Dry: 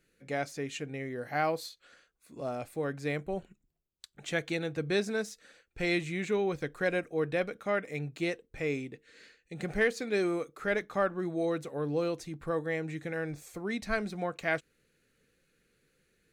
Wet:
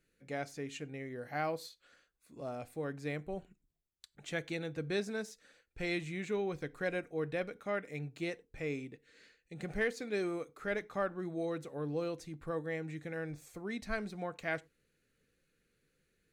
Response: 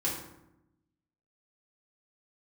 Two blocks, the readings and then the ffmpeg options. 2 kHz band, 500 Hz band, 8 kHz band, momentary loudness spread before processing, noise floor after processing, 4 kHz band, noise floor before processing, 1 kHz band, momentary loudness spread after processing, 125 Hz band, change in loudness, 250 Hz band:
-6.0 dB, -6.0 dB, -6.0 dB, 9 LU, -79 dBFS, -6.0 dB, -75 dBFS, -6.0 dB, 8 LU, -4.5 dB, -5.5 dB, -5.5 dB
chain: -filter_complex "[0:a]lowshelf=f=150:g=3.5,asplit=2[s0][s1];[1:a]atrim=start_sample=2205,atrim=end_sample=4410,asetrate=39249,aresample=44100[s2];[s1][s2]afir=irnorm=-1:irlink=0,volume=0.0501[s3];[s0][s3]amix=inputs=2:normalize=0,volume=0.473"

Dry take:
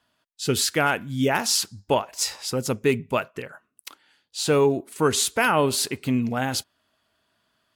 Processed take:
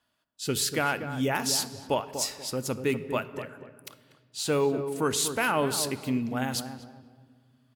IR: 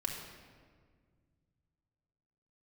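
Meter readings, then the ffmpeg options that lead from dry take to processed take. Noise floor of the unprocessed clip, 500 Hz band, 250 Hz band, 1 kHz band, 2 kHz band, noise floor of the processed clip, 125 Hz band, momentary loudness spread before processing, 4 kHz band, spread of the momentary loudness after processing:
-73 dBFS, -5.5 dB, -4.5 dB, -5.5 dB, -5.5 dB, -73 dBFS, -5.5 dB, 9 LU, -5.0 dB, 15 LU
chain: -filter_complex "[0:a]highshelf=f=11000:g=5.5,asplit=2[s0][s1];[s1]adelay=241,lowpass=f=910:p=1,volume=0.398,asplit=2[s2][s3];[s3]adelay=241,lowpass=f=910:p=1,volume=0.35,asplit=2[s4][s5];[s5]adelay=241,lowpass=f=910:p=1,volume=0.35,asplit=2[s6][s7];[s7]adelay=241,lowpass=f=910:p=1,volume=0.35[s8];[s0][s2][s4][s6][s8]amix=inputs=5:normalize=0,asplit=2[s9][s10];[1:a]atrim=start_sample=2205[s11];[s10][s11]afir=irnorm=-1:irlink=0,volume=0.251[s12];[s9][s12]amix=inputs=2:normalize=0,volume=0.422"

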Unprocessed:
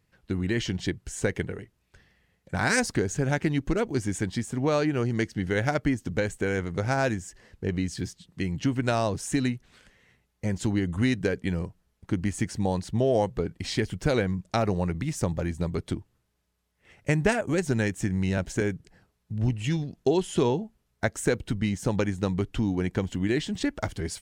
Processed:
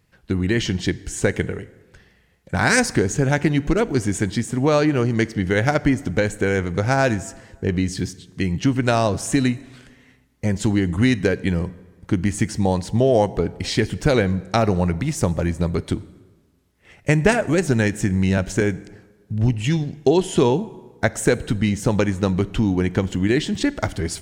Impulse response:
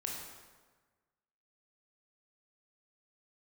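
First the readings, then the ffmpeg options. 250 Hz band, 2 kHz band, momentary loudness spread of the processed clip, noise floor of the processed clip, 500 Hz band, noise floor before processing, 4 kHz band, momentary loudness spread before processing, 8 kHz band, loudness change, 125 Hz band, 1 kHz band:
+7.0 dB, +7.0 dB, 8 LU, -57 dBFS, +7.0 dB, -74 dBFS, +7.0 dB, 8 LU, +7.0 dB, +7.0 dB, +7.0 dB, +7.0 dB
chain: -filter_complex "[0:a]asplit=2[s0][s1];[1:a]atrim=start_sample=2205[s2];[s1][s2]afir=irnorm=-1:irlink=0,volume=0.168[s3];[s0][s3]amix=inputs=2:normalize=0,volume=2"

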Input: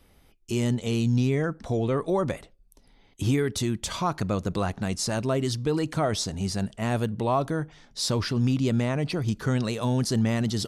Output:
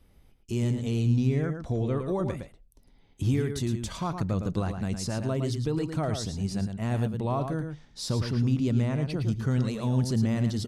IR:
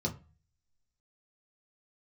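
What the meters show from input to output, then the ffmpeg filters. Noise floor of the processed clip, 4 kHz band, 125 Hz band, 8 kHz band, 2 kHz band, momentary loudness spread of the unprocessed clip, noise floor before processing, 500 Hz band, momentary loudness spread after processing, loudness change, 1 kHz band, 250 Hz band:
-59 dBFS, -7.0 dB, +0.5 dB, -7.0 dB, -6.5 dB, 5 LU, -59 dBFS, -4.5 dB, 6 LU, -2.0 dB, -6.0 dB, -2.0 dB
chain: -filter_complex "[0:a]lowshelf=f=260:g=9,asplit=2[s0][s1];[s1]adelay=110.8,volume=0.447,highshelf=f=4000:g=-2.49[s2];[s0][s2]amix=inputs=2:normalize=0,volume=0.422"

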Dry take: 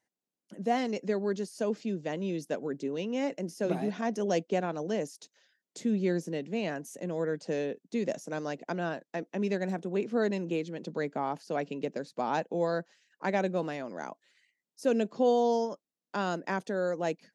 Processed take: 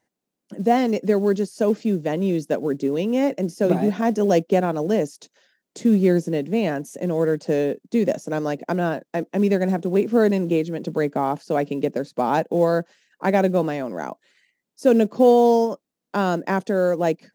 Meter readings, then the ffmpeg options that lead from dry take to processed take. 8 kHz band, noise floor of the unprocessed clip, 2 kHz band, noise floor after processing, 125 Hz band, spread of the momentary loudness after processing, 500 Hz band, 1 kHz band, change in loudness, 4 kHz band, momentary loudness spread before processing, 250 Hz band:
+6.0 dB, under -85 dBFS, +7.0 dB, -83 dBFS, +12.0 dB, 8 LU, +11.0 dB, +9.5 dB, +11.0 dB, +6.0 dB, 8 LU, +11.5 dB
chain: -af "acrusher=bits=7:mode=log:mix=0:aa=0.000001,tiltshelf=f=1100:g=3.5,volume=2.66"

